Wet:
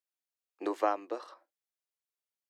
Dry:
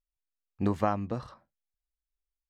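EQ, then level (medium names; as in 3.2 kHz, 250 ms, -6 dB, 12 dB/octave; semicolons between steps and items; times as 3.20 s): Chebyshev high-pass 320 Hz, order 5; 0.0 dB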